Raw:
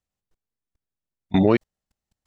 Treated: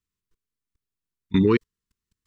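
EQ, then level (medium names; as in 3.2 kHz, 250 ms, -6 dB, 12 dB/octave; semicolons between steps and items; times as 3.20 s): Chebyshev band-stop 450–990 Hz, order 3; 0.0 dB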